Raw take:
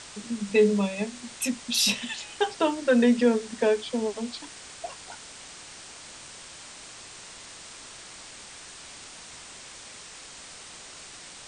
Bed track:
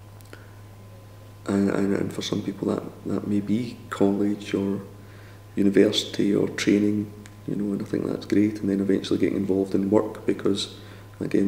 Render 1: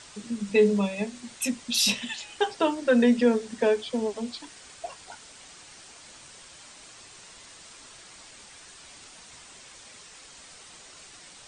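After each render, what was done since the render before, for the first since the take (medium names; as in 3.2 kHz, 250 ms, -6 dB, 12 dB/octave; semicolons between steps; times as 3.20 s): noise reduction 6 dB, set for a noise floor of -45 dBFS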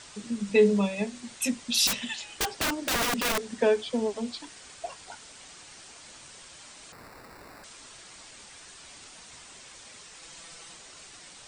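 1.87–3.45 s: integer overflow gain 21.5 dB; 6.92–7.64 s: sample-rate reducer 3.2 kHz; 10.21–10.74 s: comb 6 ms, depth 67%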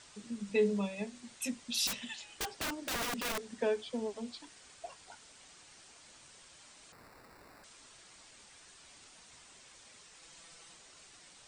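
trim -9 dB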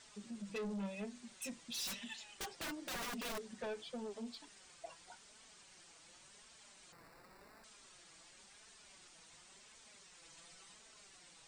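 flange 0.92 Hz, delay 4.4 ms, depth 1.8 ms, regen +32%; saturation -38 dBFS, distortion -10 dB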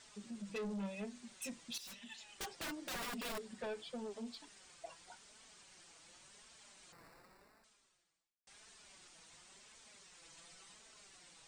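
1.78–2.42 s: fade in, from -13.5 dB; 2.98–3.95 s: band-stop 6.1 kHz; 7.08–8.47 s: fade out quadratic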